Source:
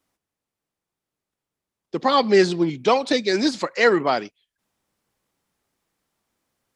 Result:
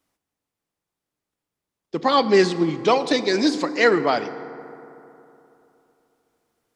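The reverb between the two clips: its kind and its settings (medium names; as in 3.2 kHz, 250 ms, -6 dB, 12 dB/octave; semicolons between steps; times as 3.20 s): FDN reverb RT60 3.1 s, high-frequency decay 0.4×, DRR 12 dB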